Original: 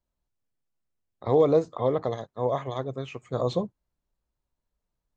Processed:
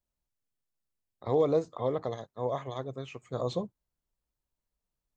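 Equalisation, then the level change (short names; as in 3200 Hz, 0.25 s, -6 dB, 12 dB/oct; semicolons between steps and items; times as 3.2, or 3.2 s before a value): high shelf 5100 Hz +5.5 dB; -5.5 dB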